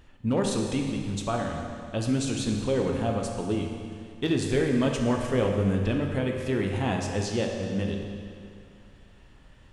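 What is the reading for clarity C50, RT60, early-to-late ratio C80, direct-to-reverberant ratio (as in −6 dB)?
3.0 dB, 2.3 s, 4.0 dB, 1.5 dB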